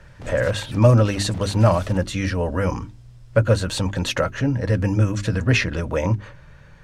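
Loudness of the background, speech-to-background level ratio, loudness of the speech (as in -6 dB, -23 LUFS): -40.5 LUFS, 19.5 dB, -21.0 LUFS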